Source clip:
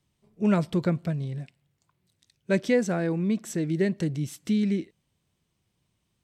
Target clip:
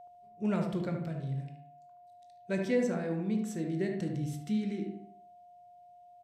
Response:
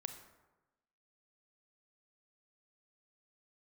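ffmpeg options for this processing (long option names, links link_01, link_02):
-filter_complex "[1:a]atrim=start_sample=2205,asetrate=88200,aresample=44100[link_01];[0:a][link_01]afir=irnorm=-1:irlink=0,aeval=exprs='val(0)+0.00355*sin(2*PI*710*n/s)':channel_layout=same,asplit=2[link_02][link_03];[link_03]adelay=74,lowpass=frequency=1400:poles=1,volume=-3.5dB,asplit=2[link_04][link_05];[link_05]adelay=74,lowpass=frequency=1400:poles=1,volume=0.45,asplit=2[link_06][link_07];[link_07]adelay=74,lowpass=frequency=1400:poles=1,volume=0.45,asplit=2[link_08][link_09];[link_09]adelay=74,lowpass=frequency=1400:poles=1,volume=0.45,asplit=2[link_10][link_11];[link_11]adelay=74,lowpass=frequency=1400:poles=1,volume=0.45,asplit=2[link_12][link_13];[link_13]adelay=74,lowpass=frequency=1400:poles=1,volume=0.45[link_14];[link_02][link_04][link_06][link_08][link_10][link_12][link_14]amix=inputs=7:normalize=0"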